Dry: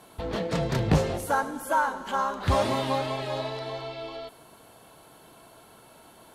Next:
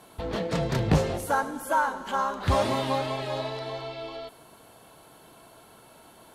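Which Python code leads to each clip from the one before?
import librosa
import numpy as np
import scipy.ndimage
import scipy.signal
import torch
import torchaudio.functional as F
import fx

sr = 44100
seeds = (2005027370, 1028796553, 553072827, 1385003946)

y = x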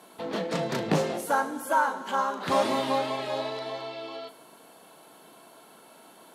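y = scipy.signal.sosfilt(scipy.signal.butter(4, 180.0, 'highpass', fs=sr, output='sos'), x)
y = fx.doubler(y, sr, ms=37.0, db=-12.0)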